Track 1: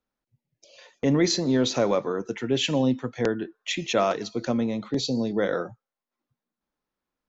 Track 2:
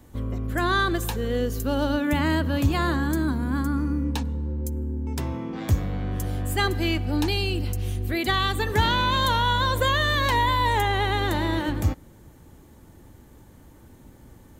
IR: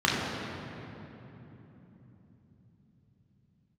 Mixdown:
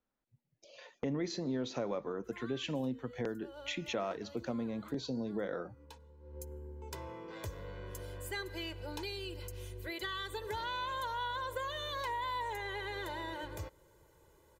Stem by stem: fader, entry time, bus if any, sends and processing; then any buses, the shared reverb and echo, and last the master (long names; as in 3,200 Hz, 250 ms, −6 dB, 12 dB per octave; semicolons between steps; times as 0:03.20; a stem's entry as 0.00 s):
−1.5 dB, 0.00 s, no send, no processing
0:06.18 −22.5 dB → 0:06.38 −10.5 dB, 1.75 s, no send, bass and treble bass −12 dB, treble +6 dB; comb filter 2 ms, depth 86%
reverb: not used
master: high-shelf EQ 4,300 Hz −10 dB; downward compressor 2.5 to 1, threshold −39 dBFS, peak gain reduction 13.5 dB